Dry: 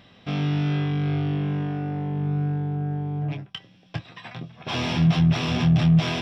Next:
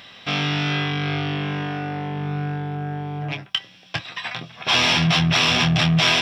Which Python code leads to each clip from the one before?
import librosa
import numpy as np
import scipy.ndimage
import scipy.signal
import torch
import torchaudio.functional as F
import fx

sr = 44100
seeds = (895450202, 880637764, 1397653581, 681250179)

y = fx.tilt_shelf(x, sr, db=-8.5, hz=640.0)
y = y * 10.0 ** (5.5 / 20.0)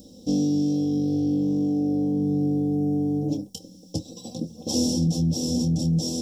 y = scipy.signal.sosfilt(scipy.signal.cheby1(3, 1.0, [430.0, 6700.0], 'bandstop', fs=sr, output='sos'), x)
y = y + 0.96 * np.pad(y, (int(3.8 * sr / 1000.0), 0))[:len(y)]
y = fx.rider(y, sr, range_db=5, speed_s=0.5)
y = y * 10.0 ** (3.5 / 20.0)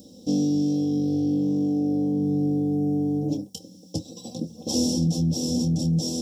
y = scipy.signal.sosfilt(scipy.signal.butter(2, 80.0, 'highpass', fs=sr, output='sos'), x)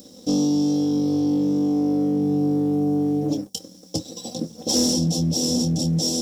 y = fx.low_shelf(x, sr, hz=280.0, db=-9.5)
y = fx.leveller(y, sr, passes=1)
y = y * 10.0 ** (4.0 / 20.0)